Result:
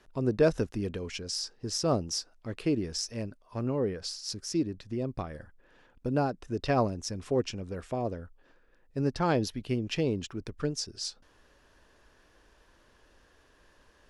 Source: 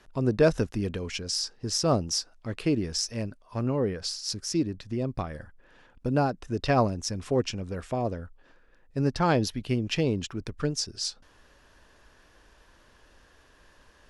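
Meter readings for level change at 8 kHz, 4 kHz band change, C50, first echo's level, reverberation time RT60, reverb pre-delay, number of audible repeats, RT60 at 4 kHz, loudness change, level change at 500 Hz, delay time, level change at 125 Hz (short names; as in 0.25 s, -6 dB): -4.5 dB, -4.5 dB, none, none, none, none, none, none, -3.0 dB, -2.5 dB, none, -4.0 dB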